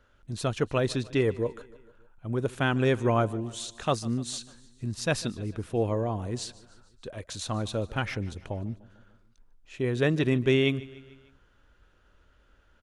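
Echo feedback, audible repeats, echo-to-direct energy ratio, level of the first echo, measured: 57%, 3, -19.0 dB, -20.5 dB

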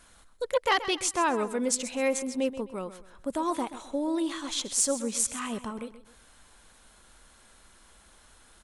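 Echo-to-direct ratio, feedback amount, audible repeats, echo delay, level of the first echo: -13.0 dB, 33%, 3, 130 ms, -13.5 dB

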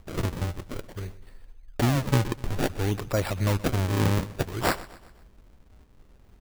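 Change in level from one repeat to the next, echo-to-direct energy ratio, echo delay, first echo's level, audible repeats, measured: -6.5 dB, -17.5 dB, 126 ms, -18.5 dB, 3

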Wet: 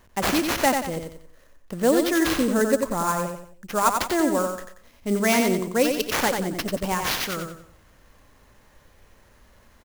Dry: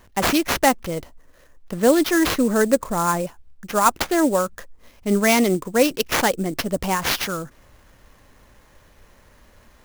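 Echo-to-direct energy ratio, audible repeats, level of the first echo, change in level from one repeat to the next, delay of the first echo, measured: -5.0 dB, 4, -5.5 dB, -9.0 dB, 91 ms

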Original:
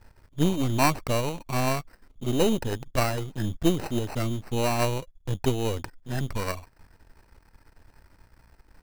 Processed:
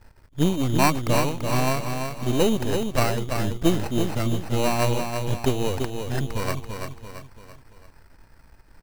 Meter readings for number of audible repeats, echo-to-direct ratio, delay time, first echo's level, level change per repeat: 4, -5.0 dB, 337 ms, -6.0 dB, -6.5 dB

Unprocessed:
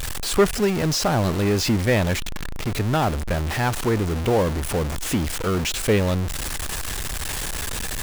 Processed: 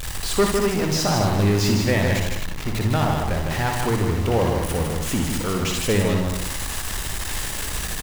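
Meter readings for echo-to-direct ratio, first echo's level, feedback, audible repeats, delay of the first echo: 0.0 dB, -4.5 dB, no regular repeats, 5, 59 ms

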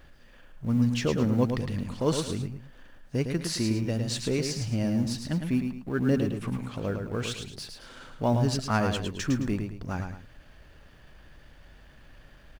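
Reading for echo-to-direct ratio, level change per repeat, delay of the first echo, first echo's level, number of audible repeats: -5.5 dB, -9.5 dB, 108 ms, -6.0 dB, 2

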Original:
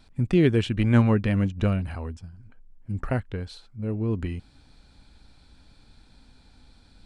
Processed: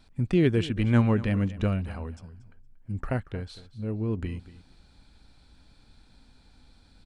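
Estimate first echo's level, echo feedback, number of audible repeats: -17.0 dB, 17%, 2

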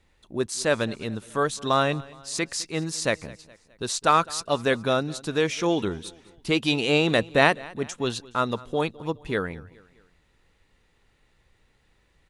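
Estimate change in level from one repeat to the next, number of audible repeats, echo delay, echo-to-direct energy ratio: -6.5 dB, 3, 209 ms, -20.5 dB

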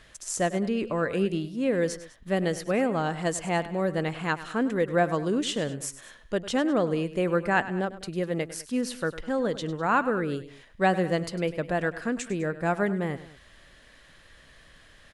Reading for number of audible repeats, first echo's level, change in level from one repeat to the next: 2, -15.0 dB, -5.0 dB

